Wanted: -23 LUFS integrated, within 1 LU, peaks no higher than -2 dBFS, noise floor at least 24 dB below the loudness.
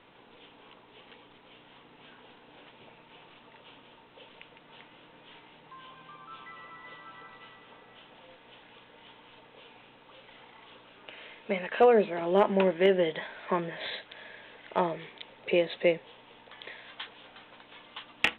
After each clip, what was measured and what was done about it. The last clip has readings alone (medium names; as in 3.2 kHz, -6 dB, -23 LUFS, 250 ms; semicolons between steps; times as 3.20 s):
loudness -28.0 LUFS; peak level -12.5 dBFS; loudness target -23.0 LUFS
-> trim +5 dB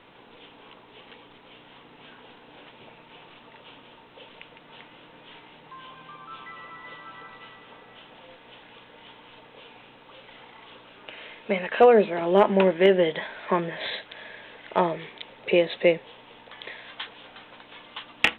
loudness -23.0 LUFS; peak level -7.5 dBFS; noise floor -52 dBFS